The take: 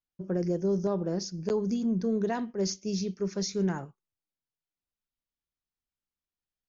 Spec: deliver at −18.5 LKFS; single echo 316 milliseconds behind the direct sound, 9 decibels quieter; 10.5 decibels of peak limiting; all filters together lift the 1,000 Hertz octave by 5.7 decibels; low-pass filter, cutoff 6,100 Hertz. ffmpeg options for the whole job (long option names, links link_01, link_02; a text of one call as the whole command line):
ffmpeg -i in.wav -af "lowpass=6100,equalizer=frequency=1000:width_type=o:gain=7.5,alimiter=level_in=2dB:limit=-24dB:level=0:latency=1,volume=-2dB,aecho=1:1:316:0.355,volume=15.5dB" out.wav